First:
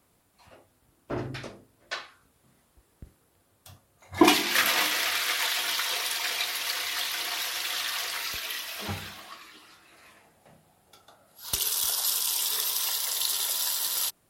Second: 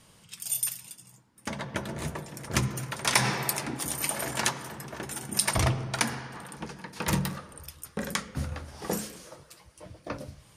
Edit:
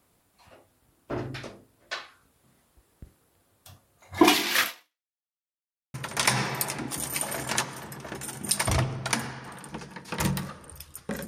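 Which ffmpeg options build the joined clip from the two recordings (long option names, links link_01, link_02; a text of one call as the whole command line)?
ffmpeg -i cue0.wav -i cue1.wav -filter_complex "[0:a]apad=whole_dur=11.27,atrim=end=11.27,asplit=2[link_01][link_02];[link_01]atrim=end=5.14,asetpts=PTS-STARTPTS,afade=type=out:start_time=4.63:duration=0.51:curve=exp[link_03];[link_02]atrim=start=5.14:end=5.94,asetpts=PTS-STARTPTS,volume=0[link_04];[1:a]atrim=start=2.82:end=8.15,asetpts=PTS-STARTPTS,afade=type=in:duration=0.004:curve=hsin[link_05];[link_03][link_04][link_05]concat=n=3:v=0:a=1" out.wav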